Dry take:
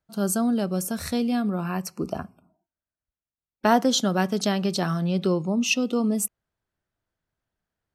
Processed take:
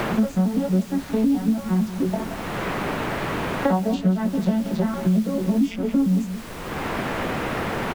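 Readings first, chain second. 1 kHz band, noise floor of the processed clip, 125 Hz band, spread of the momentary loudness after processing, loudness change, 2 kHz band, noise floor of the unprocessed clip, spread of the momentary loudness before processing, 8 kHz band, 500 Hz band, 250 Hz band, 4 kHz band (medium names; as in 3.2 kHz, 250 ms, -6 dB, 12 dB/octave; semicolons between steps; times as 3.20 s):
+1.0 dB, -35 dBFS, +5.5 dB, 7 LU, +1.0 dB, +3.0 dB, under -85 dBFS, 9 LU, -10.0 dB, +1.0 dB, +4.5 dB, -5.5 dB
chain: vocoder on a broken chord minor triad, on F#3, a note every 112 ms; chorus 1.2 Hz, delay 16 ms, depth 5.4 ms; delay 174 ms -14.5 dB; added noise pink -48 dBFS; three bands compressed up and down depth 100%; trim +6 dB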